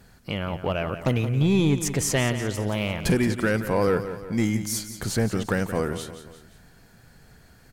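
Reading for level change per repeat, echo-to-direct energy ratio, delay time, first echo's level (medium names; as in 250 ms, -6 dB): -6.0 dB, -10.5 dB, 175 ms, -11.5 dB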